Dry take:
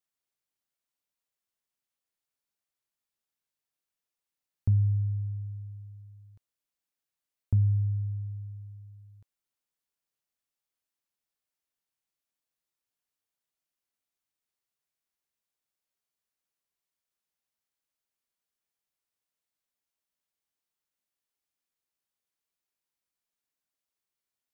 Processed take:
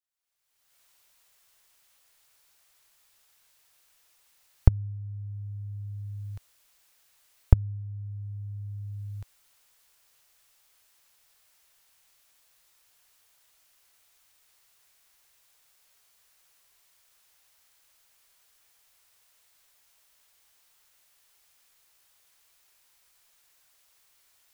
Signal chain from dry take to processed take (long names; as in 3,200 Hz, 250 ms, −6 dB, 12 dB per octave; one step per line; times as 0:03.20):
camcorder AGC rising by 38 dB per second
parametric band 230 Hz −14 dB 1.7 octaves
level −5.5 dB